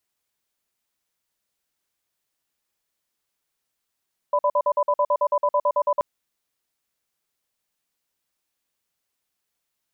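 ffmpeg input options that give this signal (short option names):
-f lavfi -i "aevalsrc='0.106*(sin(2*PI*586*t)+sin(2*PI*998*t))*clip(min(mod(t,0.11),0.06-mod(t,0.11))/0.005,0,1)':d=1.68:s=44100"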